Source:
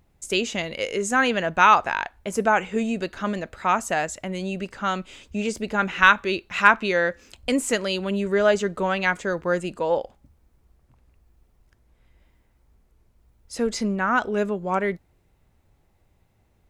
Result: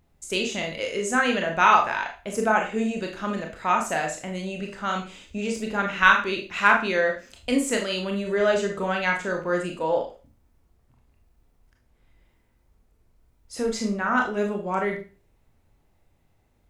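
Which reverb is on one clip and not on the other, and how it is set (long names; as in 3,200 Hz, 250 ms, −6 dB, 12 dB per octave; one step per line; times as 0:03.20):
four-comb reverb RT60 0.34 s, combs from 25 ms, DRR 1.5 dB
level −3.5 dB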